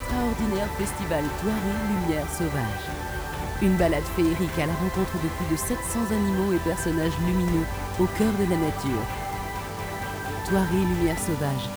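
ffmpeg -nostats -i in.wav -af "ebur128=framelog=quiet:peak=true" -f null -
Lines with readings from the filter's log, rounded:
Integrated loudness:
  I:         -26.0 LUFS
  Threshold: -36.0 LUFS
Loudness range:
  LRA:         2.1 LU
  Threshold: -45.9 LUFS
  LRA low:   -27.0 LUFS
  LRA high:  -24.9 LUFS
True peak:
  Peak:       -8.8 dBFS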